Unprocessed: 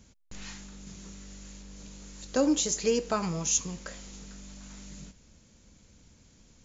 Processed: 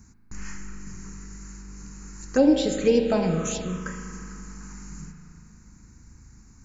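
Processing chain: on a send at -3.5 dB: reverb RT60 2.8 s, pre-delay 38 ms; on the sum: dynamic EQ 910 Hz, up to +5 dB, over -42 dBFS, Q 0.99; envelope phaser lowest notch 560 Hz, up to 1200 Hz, full sweep at -21.5 dBFS; bell 2900 Hz -6 dB 0.89 oct; gain +7 dB

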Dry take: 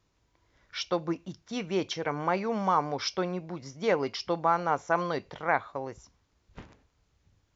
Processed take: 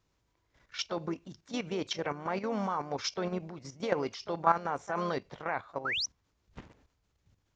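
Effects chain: harmoniser +3 st -12 dB; painted sound rise, 5.85–6.06, 1200–6300 Hz -28 dBFS; level quantiser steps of 11 dB; gain +1 dB

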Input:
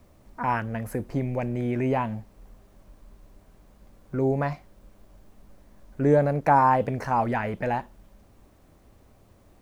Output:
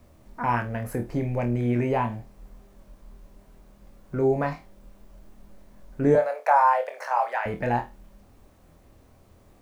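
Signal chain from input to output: 6.15–7.46 Chebyshev high-pass 560 Hz, order 4; flutter echo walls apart 4.3 m, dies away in 0.22 s

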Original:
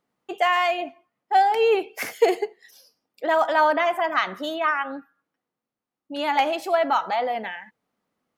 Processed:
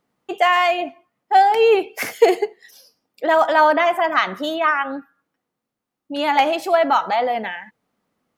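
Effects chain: low shelf 210 Hz +3.5 dB; gain +4.5 dB

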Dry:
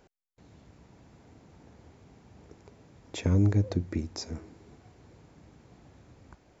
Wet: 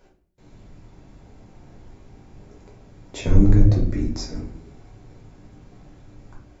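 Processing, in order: octaver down 2 oct, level -2 dB; shoebox room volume 67 m³, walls mixed, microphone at 1 m

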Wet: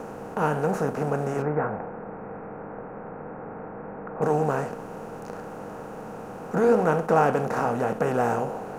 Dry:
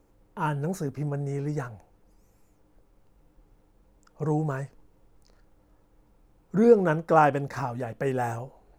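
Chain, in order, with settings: per-bin compression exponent 0.4; 1.42–4.22 steep low-pass 2300 Hz 48 dB/oct; flange 1 Hz, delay 3.9 ms, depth 10 ms, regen -68%

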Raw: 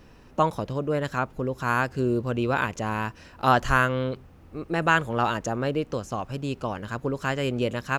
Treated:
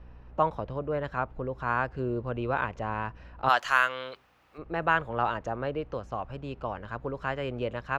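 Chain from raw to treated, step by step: three-band isolator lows -16 dB, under 540 Hz, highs -13 dB, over 4500 Hz; hum 60 Hz, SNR 33 dB; tilt -4 dB/oct, from 3.48 s +2.5 dB/oct, from 4.57 s -3.5 dB/oct; gain -2 dB

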